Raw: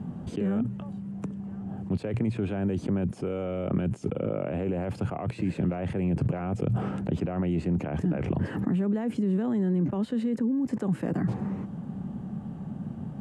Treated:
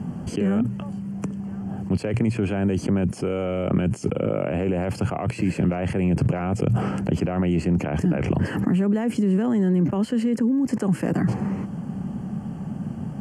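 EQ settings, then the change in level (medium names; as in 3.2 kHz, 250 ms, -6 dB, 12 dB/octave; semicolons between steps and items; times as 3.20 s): Butterworth band-stop 3.7 kHz, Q 3.8; treble shelf 2.4 kHz +8.5 dB; +5.5 dB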